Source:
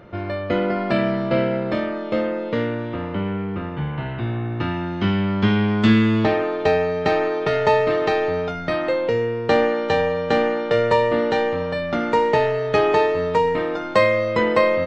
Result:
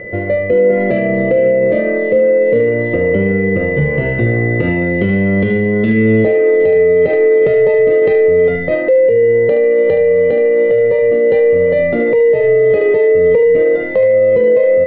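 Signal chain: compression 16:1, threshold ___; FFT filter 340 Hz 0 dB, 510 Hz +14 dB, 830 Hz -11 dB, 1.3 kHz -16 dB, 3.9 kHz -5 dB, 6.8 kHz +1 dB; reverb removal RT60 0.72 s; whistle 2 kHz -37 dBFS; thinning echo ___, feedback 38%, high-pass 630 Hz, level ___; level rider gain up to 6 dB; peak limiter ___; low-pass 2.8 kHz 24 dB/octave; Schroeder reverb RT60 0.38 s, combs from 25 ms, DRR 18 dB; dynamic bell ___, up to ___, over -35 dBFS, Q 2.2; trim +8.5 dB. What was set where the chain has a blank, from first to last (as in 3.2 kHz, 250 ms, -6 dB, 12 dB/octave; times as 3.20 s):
-20 dBFS, 73 ms, -8 dB, -13 dBFS, 870 Hz, -4 dB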